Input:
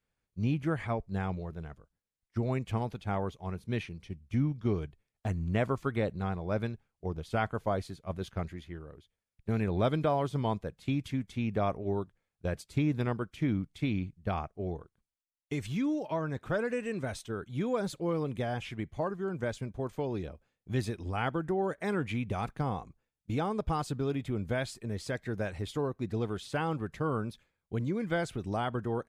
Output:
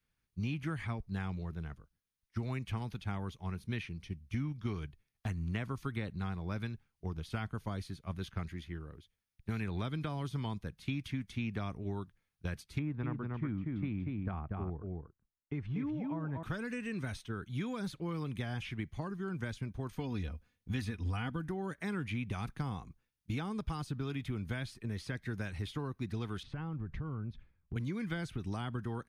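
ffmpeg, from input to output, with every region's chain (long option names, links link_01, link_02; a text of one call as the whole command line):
ffmpeg -i in.wav -filter_complex "[0:a]asettb=1/sr,asplit=3[link_01][link_02][link_03];[link_01]atrim=end=12.794[link_04];[link_02]atrim=start=12.79:end=16.43,asetpts=PTS-STARTPTS,afade=type=in:duration=0.004:curve=qsin,afade=type=out:start_time=3.636:duration=0.004:curve=qsin,lowpass=1200,aecho=1:1:239:0.596,atrim=end_sample=160524[link_05];[link_03]atrim=start=16.426[link_06];[link_04][link_05]acrossfade=duration=0.004:curve1=hsin:curve2=qsin[link_07];[link_07][link_06]acrossfade=duration=0.004:curve1=qsin:curve2=hsin,asettb=1/sr,asplit=3[link_08][link_09][link_10];[link_08]atrim=end=19.964[link_11];[link_09]atrim=start=19.96:end=21.49,asetpts=PTS-STARTPTS,afade=type=in:duration=0.004:curve=qsin,afade=type=out:start_time=1.526:duration=0.004:curve=qsin,equalizer=frequency=91:width_type=o:width=1.1:gain=11,aecho=1:1:4.1:0.55,atrim=end_sample=67473[link_12];[link_10]atrim=start=21.486[link_13];[link_11][link_12]acrossfade=duration=0.004:curve1=hsin:curve2=qsin[link_14];[link_14][link_13]acrossfade=duration=0.004:curve1=qsin:curve2=hsin,asettb=1/sr,asplit=3[link_15][link_16][link_17];[link_15]atrim=end=26.434[link_18];[link_16]atrim=start=26.43:end=27.76,asetpts=PTS-STARTPTS,afade=type=in:duration=0.004:curve=qsin,afade=type=out:start_time=1.326:duration=0.004:curve=qsin,lowpass=frequency=2400:poles=1,aemphasis=mode=reproduction:type=bsi,acompressor=threshold=-37dB:ratio=5:attack=3.2:release=140:knee=1:detection=peak[link_19];[link_17]atrim=start=27.756[link_20];[link_18][link_19]acrossfade=duration=0.004:curve1=hsin:curve2=qsin[link_21];[link_21][link_20]acrossfade=duration=0.004:curve1=qsin:curve2=hsin,acrossover=split=350|750|3200[link_22][link_23][link_24][link_25];[link_22]acompressor=threshold=-36dB:ratio=4[link_26];[link_23]acompressor=threshold=-47dB:ratio=4[link_27];[link_24]acompressor=threshold=-43dB:ratio=4[link_28];[link_25]acompressor=threshold=-55dB:ratio=4[link_29];[link_26][link_27][link_28][link_29]amix=inputs=4:normalize=0,equalizer=frequency=580:width_type=o:width=1.3:gain=-9.5,bandreject=frequency=7500:width=5.3,volume=2dB" out.wav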